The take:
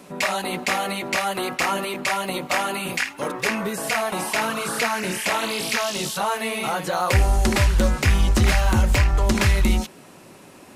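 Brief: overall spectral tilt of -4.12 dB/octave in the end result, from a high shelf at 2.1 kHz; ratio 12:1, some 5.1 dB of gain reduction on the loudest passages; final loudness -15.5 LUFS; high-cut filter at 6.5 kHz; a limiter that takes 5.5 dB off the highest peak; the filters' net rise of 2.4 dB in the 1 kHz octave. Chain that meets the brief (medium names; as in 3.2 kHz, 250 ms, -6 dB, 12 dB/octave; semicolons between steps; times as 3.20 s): low-pass 6.5 kHz; peaking EQ 1 kHz +4.5 dB; treble shelf 2.1 kHz -6 dB; compression 12:1, threshold -18 dBFS; trim +11 dB; peak limiter -5.5 dBFS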